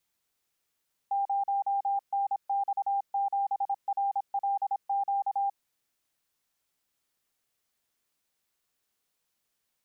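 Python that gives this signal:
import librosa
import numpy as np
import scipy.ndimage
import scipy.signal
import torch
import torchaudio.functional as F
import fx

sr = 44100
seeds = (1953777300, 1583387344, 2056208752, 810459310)

y = fx.morse(sr, text='0NX7RLQ', wpm=26, hz=796.0, level_db=-25.0)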